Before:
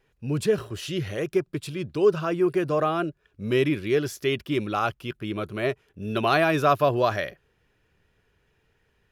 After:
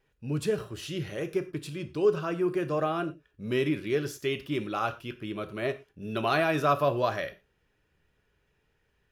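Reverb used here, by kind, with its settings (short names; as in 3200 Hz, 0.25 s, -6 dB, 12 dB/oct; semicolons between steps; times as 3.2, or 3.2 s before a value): non-linear reverb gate 0.14 s falling, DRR 8.5 dB; gain -5 dB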